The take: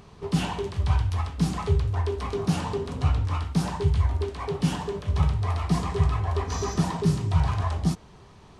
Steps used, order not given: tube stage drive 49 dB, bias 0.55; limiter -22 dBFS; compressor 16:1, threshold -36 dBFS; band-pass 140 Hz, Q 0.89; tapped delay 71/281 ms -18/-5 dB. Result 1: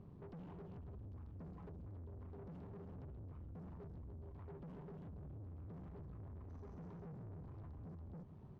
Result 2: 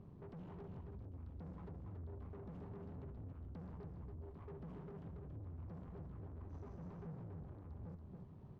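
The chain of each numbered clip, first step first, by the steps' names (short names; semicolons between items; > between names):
limiter > tapped delay > compressor > band-pass > tube stage; limiter > compressor > band-pass > tube stage > tapped delay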